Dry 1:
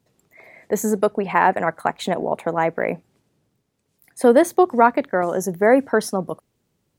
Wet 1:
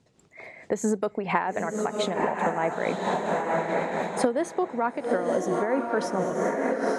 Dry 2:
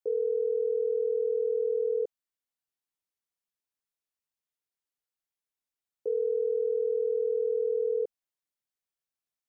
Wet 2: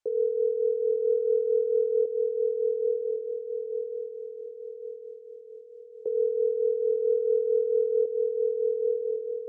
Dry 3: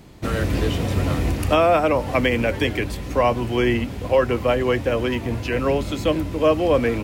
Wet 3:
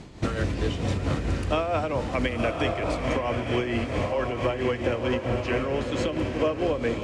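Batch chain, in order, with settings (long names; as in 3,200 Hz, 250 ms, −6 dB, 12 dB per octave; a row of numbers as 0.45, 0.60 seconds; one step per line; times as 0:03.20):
low-pass filter 8,400 Hz 24 dB per octave
on a send: feedback delay with all-pass diffusion 969 ms, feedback 47%, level −5 dB
on the sum: downward compressor 6 to 1, threshold −25 dBFS
amplitude tremolo 4.5 Hz, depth 50%
loudness normalisation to −27 LKFS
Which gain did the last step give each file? +4.5, +6.0, +4.0 decibels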